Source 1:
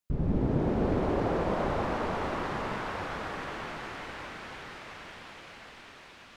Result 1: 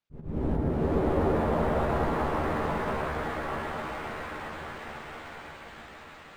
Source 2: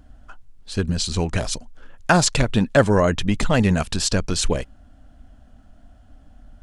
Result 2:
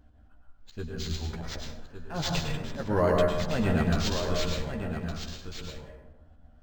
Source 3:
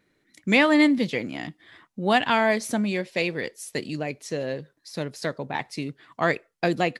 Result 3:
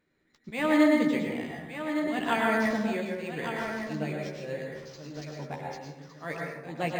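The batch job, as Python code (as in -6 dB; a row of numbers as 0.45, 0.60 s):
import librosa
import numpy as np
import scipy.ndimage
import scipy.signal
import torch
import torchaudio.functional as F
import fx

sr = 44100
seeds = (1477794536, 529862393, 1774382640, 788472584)

y = fx.auto_swell(x, sr, attack_ms=206.0)
y = fx.doubler(y, sr, ms=13.0, db=-5)
y = y + 10.0 ** (-8.5 / 20.0) * np.pad(y, (int(1161 * sr / 1000.0), 0))[:len(y)]
y = fx.rev_plate(y, sr, seeds[0], rt60_s=1.1, hf_ratio=0.4, predelay_ms=90, drr_db=-0.5)
y = np.interp(np.arange(len(y)), np.arange(len(y))[::4], y[::4])
y = y * 10.0 ** (-30 / 20.0) / np.sqrt(np.mean(np.square(y)))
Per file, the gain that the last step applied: -2.5, -9.5, -7.5 dB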